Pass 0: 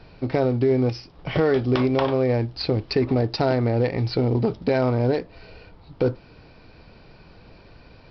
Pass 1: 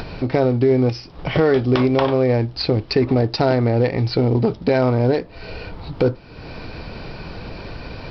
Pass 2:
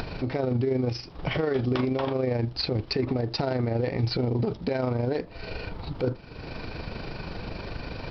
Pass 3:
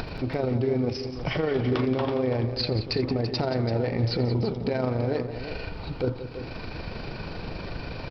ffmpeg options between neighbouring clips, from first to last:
ffmpeg -i in.wav -af "acompressor=mode=upward:threshold=-24dB:ratio=2.5,volume=4dB" out.wav
ffmpeg -i in.wav -af "alimiter=limit=-15.5dB:level=0:latency=1:release=49,tremolo=f=25:d=0.462,volume=-1dB" out.wav
ffmpeg -i in.wav -af "aecho=1:1:85|177|336:0.133|0.266|0.299" out.wav

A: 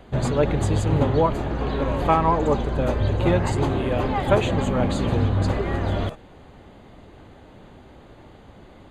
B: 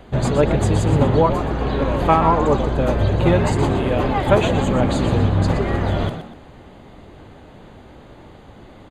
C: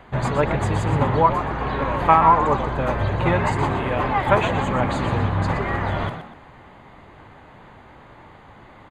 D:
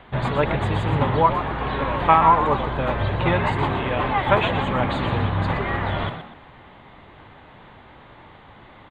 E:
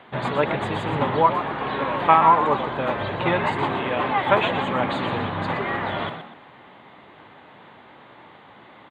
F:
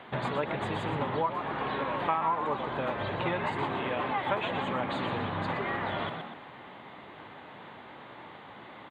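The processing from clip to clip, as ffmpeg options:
ffmpeg -i in.wav -filter_complex "[0:a]asplit=4[link_01][link_02][link_03][link_04];[link_02]adelay=121,afreqshift=67,volume=-10dB[link_05];[link_03]adelay=242,afreqshift=134,volume=-20.2dB[link_06];[link_04]adelay=363,afreqshift=201,volume=-30.3dB[link_07];[link_01][link_05][link_06][link_07]amix=inputs=4:normalize=0,volume=3.5dB" out.wav
ffmpeg -i in.wav -af "equalizer=frequency=125:width_type=o:width=1:gain=4,equalizer=frequency=1000:width_type=o:width=1:gain=10,equalizer=frequency=2000:width_type=o:width=1:gain=9,volume=-7.5dB" out.wav
ffmpeg -i in.wav -af "highshelf=frequency=4500:width_type=q:width=3:gain=-7.5,volume=-1dB" out.wav
ffmpeg -i in.wav -af "highpass=180" out.wav
ffmpeg -i in.wav -af "acompressor=threshold=-32dB:ratio=2.5" out.wav

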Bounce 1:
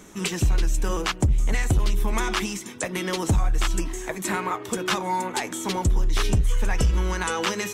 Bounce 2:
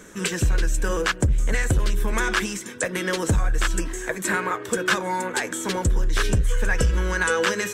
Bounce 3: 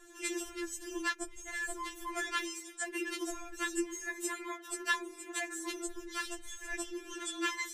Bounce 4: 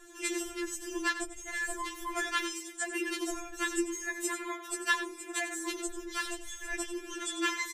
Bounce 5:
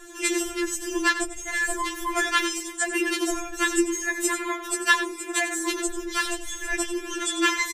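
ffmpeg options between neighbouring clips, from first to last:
ffmpeg -i in.wav -af "equalizer=frequency=500:width_type=o:width=0.33:gain=8,equalizer=frequency=800:width_type=o:width=0.33:gain=-5,equalizer=frequency=1600:width_type=o:width=0.33:gain=11,equalizer=frequency=8000:width_type=o:width=0.33:gain=4" out.wav
ffmpeg -i in.wav -af "afftfilt=real='re*4*eq(mod(b,16),0)':imag='im*4*eq(mod(b,16),0)':win_size=2048:overlap=0.75,volume=-8.5dB" out.wav
ffmpeg -i in.wav -af "aecho=1:1:94:0.266,volume=3dB" out.wav
ffmpeg -i in.wav -filter_complex "[0:a]asplit=2[link_01][link_02];[link_02]adelay=874.6,volume=-20dB,highshelf=frequency=4000:gain=-19.7[link_03];[link_01][link_03]amix=inputs=2:normalize=0,volume=9dB" out.wav

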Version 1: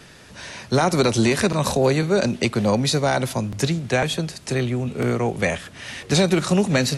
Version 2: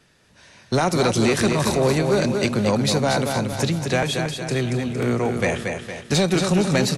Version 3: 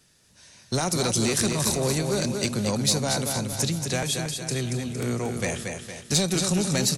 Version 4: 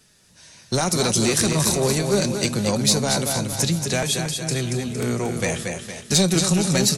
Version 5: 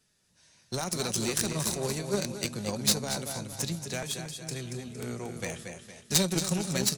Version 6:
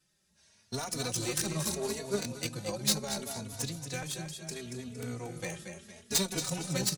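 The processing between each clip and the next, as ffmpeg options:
ffmpeg -i in.wav -af "agate=range=-13dB:threshold=-32dB:ratio=16:detection=peak,aecho=1:1:230|460|690|920|1150|1380:0.501|0.231|0.106|0.0488|0.0224|0.0103,asoftclip=type=tanh:threshold=-10dB" out.wav
ffmpeg -i in.wav -af "bass=frequency=250:gain=4,treble=frequency=4000:gain=14,volume=-8dB" out.wav
ffmpeg -i in.wav -af "flanger=delay=4.6:depth=1.7:regen=68:speed=1:shape=sinusoidal,volume=8.5dB" out.wav
ffmpeg -i in.wav -af "aeval=exprs='0.596*(cos(1*acos(clip(val(0)/0.596,-1,1)))-cos(1*PI/2))+0.188*(cos(3*acos(clip(val(0)/0.596,-1,1)))-cos(3*PI/2))+0.0119*(cos(5*acos(clip(val(0)/0.596,-1,1)))-cos(5*PI/2))':channel_layout=same,volume=2dB" out.wav
ffmpeg -i in.wav -filter_complex "[0:a]asplit=2[link_01][link_02];[link_02]adelay=3.4,afreqshift=0.73[link_03];[link_01][link_03]amix=inputs=2:normalize=1" out.wav

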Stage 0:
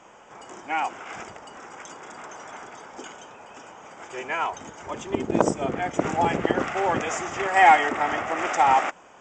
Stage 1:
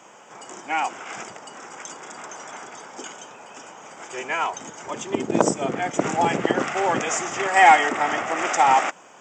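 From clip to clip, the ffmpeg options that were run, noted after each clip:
ffmpeg -i in.wav -af "highpass=frequency=120:width=0.5412,highpass=frequency=120:width=1.3066,highshelf=frequency=5200:gain=10,volume=1.5dB" out.wav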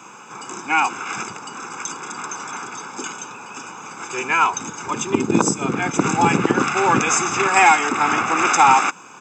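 ffmpeg -i in.wav -filter_complex "[0:a]aecho=1:1:0.8:0.77,acrossover=split=3900[link_01][link_02];[link_01]alimiter=limit=-8.5dB:level=0:latency=1:release=463[link_03];[link_03][link_02]amix=inputs=2:normalize=0,volume=5.5dB" out.wav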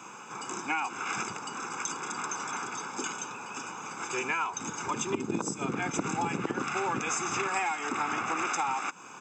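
ffmpeg -i in.wav -af "acompressor=threshold=-23dB:ratio=8,volume=-4.5dB" out.wav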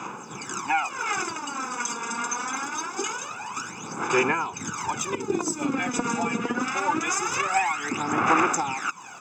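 ffmpeg -i in.wav -af "aphaser=in_gain=1:out_gain=1:delay=4.3:decay=0.69:speed=0.24:type=sinusoidal,volume=2.5dB" out.wav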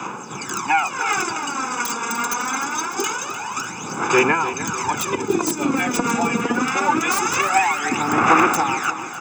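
ffmpeg -i in.wav -filter_complex "[0:a]acrossover=split=270|1200|4400[link_01][link_02][link_03][link_04];[link_04]aeval=exprs='(mod(18.8*val(0)+1,2)-1)/18.8':channel_layout=same[link_05];[link_01][link_02][link_03][link_05]amix=inputs=4:normalize=0,aecho=1:1:300|600|900|1200|1500:0.237|0.126|0.0666|0.0353|0.0187,volume=6dB" out.wav

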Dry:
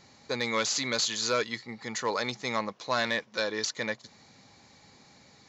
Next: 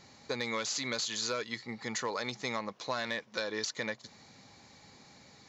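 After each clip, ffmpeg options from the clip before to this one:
ffmpeg -i in.wav -af "acompressor=threshold=-31dB:ratio=6" out.wav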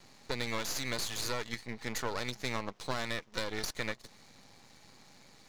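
ffmpeg -i in.wav -af "aeval=exprs='max(val(0),0)':channel_layout=same,volume=2.5dB" out.wav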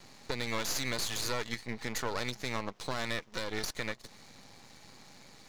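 ffmpeg -i in.wav -af "alimiter=limit=-23dB:level=0:latency=1:release=255,volume=3.5dB" out.wav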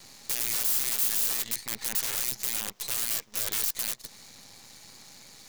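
ffmpeg -i in.wav -af "aeval=exprs='(mod(29.9*val(0)+1,2)-1)/29.9':channel_layout=same,crystalizer=i=3:c=0,volume=-1dB" out.wav

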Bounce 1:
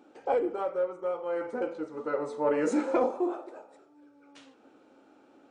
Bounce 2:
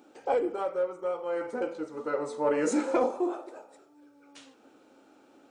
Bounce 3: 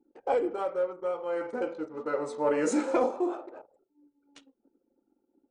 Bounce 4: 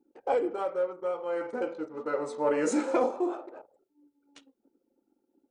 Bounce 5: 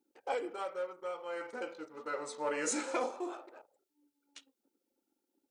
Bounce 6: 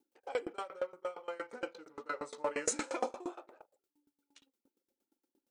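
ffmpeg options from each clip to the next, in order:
ffmpeg -i in.wav -af "highshelf=frequency=4700:gain=10" out.wav
ffmpeg -i in.wav -af "anlmdn=0.0158" out.wav
ffmpeg -i in.wav -af "lowshelf=frequency=73:gain=-6.5" out.wav
ffmpeg -i in.wav -af "tiltshelf=frequency=1200:gain=-8,volume=-4dB" out.wav
ffmpeg -i in.wav -af "aeval=exprs='val(0)*pow(10,-24*if(lt(mod(8.6*n/s,1),2*abs(8.6)/1000),1-mod(8.6*n/s,1)/(2*abs(8.6)/1000),(mod(8.6*n/s,1)-2*abs(8.6)/1000)/(1-2*abs(8.6)/1000))/20)':channel_layout=same,volume=5.5dB" out.wav

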